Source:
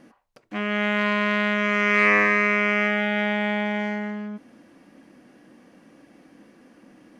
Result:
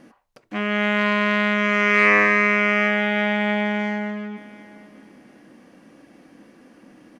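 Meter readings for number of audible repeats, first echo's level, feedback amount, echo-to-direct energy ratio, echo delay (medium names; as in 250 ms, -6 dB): 1, -20.0 dB, no regular repeats, -20.0 dB, 755 ms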